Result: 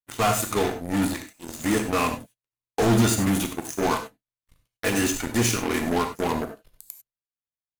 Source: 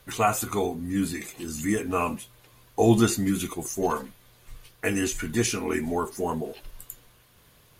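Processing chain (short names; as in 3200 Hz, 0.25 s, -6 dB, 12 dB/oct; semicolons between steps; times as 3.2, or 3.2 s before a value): hard clip -23.5 dBFS, distortion -7 dB; power-law curve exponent 3; non-linear reverb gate 0.12 s flat, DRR 6 dB; gain +6 dB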